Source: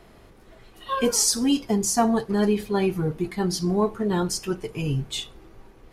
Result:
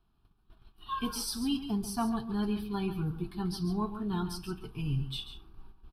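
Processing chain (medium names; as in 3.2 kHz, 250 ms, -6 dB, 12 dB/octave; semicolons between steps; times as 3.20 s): gate -47 dBFS, range -15 dB; bass shelf 93 Hz +8 dB; static phaser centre 2 kHz, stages 6; delay 139 ms -10.5 dB; trim -7.5 dB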